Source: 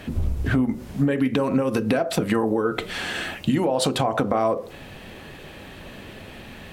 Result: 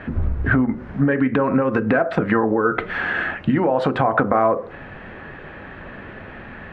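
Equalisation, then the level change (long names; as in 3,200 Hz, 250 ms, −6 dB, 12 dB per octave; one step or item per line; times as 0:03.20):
low-pass with resonance 1,600 Hz, resonance Q 2.3
+2.5 dB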